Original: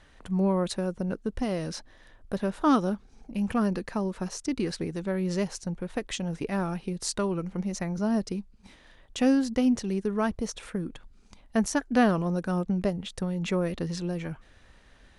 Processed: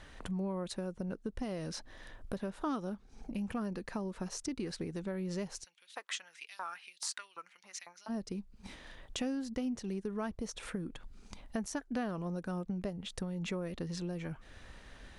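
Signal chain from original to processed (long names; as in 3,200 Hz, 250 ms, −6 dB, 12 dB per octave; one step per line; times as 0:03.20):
downward compressor 3 to 1, threshold −43 dBFS, peak gain reduction 19.5 dB
0:05.63–0:08.08: auto-filter high-pass saw up 1 Hz → 5.5 Hz 920–4,100 Hz
level +3.5 dB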